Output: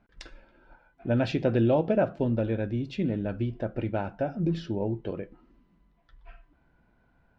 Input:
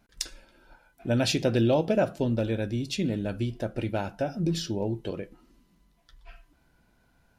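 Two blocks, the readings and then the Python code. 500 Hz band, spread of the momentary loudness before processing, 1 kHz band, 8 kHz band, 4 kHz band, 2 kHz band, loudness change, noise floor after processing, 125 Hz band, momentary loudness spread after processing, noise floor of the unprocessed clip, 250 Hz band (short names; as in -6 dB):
0.0 dB, 13 LU, 0.0 dB, under -20 dB, -10.5 dB, -2.5 dB, 0.0 dB, -67 dBFS, 0.0 dB, 10 LU, -66 dBFS, 0.0 dB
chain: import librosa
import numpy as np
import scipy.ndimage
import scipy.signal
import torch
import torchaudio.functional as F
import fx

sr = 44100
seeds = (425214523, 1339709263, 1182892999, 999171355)

y = scipy.signal.sosfilt(scipy.signal.butter(2, 2100.0, 'lowpass', fs=sr, output='sos'), x)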